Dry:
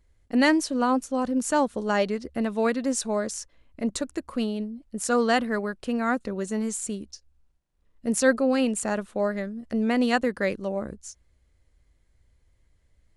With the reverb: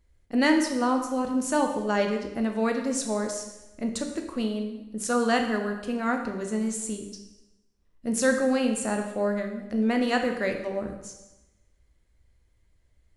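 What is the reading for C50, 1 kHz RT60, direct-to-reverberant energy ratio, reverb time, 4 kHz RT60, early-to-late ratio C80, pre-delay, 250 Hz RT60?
6.5 dB, 1.0 s, 3.5 dB, 1.0 s, 0.90 s, 9.0 dB, 6 ms, 1.0 s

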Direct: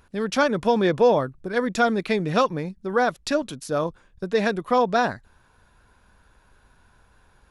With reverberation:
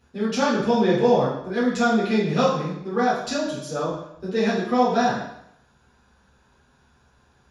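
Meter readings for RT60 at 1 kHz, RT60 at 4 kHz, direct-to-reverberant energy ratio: 0.75 s, 0.70 s, −10.5 dB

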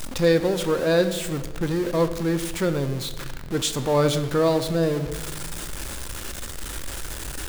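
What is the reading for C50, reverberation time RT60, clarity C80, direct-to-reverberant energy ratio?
11.5 dB, 1.2 s, 13.0 dB, 9.0 dB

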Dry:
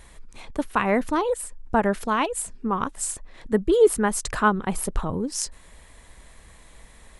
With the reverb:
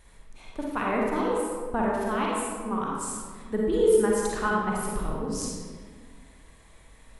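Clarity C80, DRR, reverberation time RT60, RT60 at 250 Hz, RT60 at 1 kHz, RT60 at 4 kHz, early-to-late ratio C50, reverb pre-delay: 1.0 dB, −3.5 dB, 1.7 s, 2.2 s, 1.6 s, 1.0 s, −2.0 dB, 37 ms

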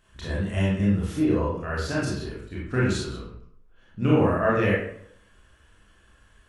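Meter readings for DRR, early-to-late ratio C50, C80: −7.5 dB, −0.5 dB, 4.0 dB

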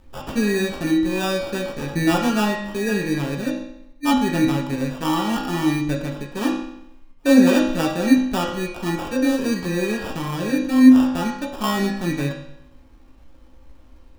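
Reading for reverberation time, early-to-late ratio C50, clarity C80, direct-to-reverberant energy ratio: 0.75 s, 4.0 dB, 6.5 dB, −3.0 dB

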